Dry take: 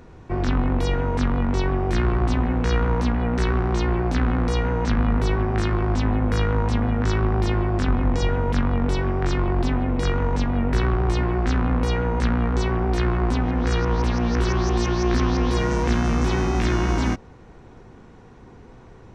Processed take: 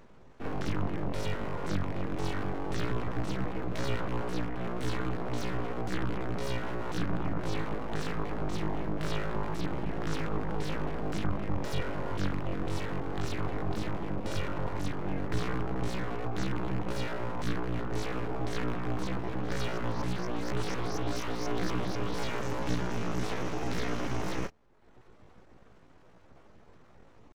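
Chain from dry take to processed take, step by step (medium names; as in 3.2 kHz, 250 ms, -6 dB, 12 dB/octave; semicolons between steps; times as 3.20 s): reverb removal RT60 0.58 s; tempo 0.7×; full-wave rectifier; trim -7 dB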